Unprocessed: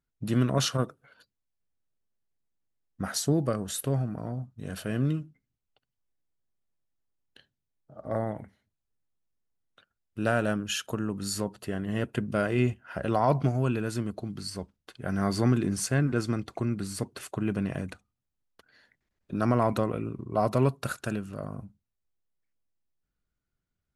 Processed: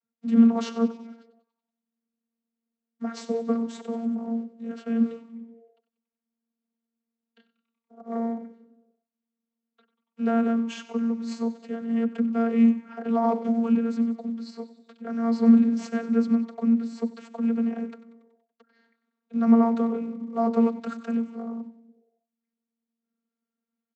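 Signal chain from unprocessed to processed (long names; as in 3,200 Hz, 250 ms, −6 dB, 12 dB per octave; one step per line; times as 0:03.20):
stylus tracing distortion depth 0.047 ms
in parallel at −5 dB: floating-point word with a short mantissa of 2 bits
on the sum: echo with shifted repeats 94 ms, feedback 57%, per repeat −130 Hz, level −14.5 dB
channel vocoder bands 32, saw 230 Hz
level +1.5 dB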